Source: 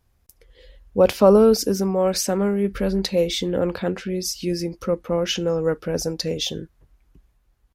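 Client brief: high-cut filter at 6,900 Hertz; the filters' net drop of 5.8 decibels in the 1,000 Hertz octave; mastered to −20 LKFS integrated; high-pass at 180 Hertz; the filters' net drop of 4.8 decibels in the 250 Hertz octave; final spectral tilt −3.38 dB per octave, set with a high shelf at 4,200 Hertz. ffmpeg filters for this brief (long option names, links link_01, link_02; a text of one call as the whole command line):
ffmpeg -i in.wav -af "highpass=180,lowpass=6900,equalizer=frequency=250:width_type=o:gain=-4,equalizer=frequency=1000:width_type=o:gain=-8.5,highshelf=frequency=4200:gain=8,volume=3.5dB" out.wav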